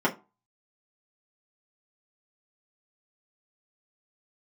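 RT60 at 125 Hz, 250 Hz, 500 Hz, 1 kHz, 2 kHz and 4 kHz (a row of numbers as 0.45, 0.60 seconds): 0.25, 0.30, 0.30, 0.30, 0.20, 0.15 seconds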